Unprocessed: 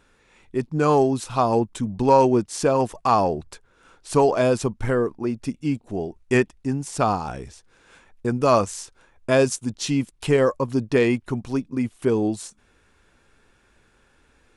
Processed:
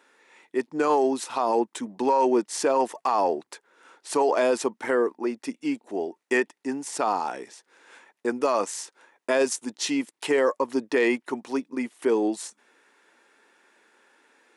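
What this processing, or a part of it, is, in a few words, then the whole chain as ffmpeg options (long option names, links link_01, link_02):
laptop speaker: -af "highpass=frequency=280:width=0.5412,highpass=frequency=280:width=1.3066,equalizer=frequency=900:width_type=o:width=0.22:gain=5.5,equalizer=frequency=1900:width_type=o:width=0.3:gain=6,alimiter=limit=-13dB:level=0:latency=1:release=31"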